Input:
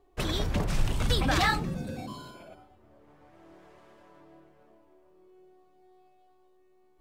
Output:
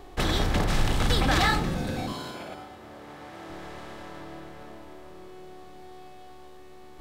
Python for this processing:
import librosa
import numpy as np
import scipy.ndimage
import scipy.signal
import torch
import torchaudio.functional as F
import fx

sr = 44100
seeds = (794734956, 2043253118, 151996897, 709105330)

y = fx.bin_compress(x, sr, power=0.6)
y = fx.highpass(y, sr, hz=180.0, slope=6, at=(2.12, 3.5))